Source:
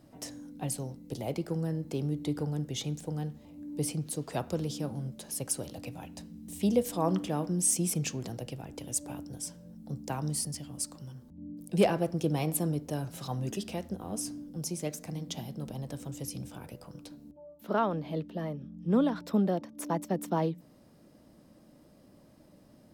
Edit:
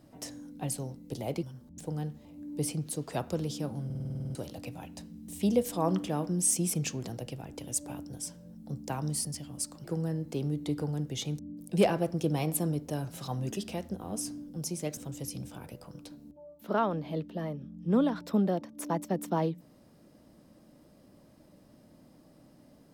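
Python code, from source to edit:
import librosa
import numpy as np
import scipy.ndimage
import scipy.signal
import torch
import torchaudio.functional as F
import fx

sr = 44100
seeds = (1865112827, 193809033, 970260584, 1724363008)

y = fx.edit(x, sr, fx.swap(start_s=1.43, length_s=1.55, other_s=11.04, other_length_s=0.35),
    fx.stutter_over(start_s=5.05, slice_s=0.05, count=10),
    fx.cut(start_s=14.97, length_s=1.0), tone=tone)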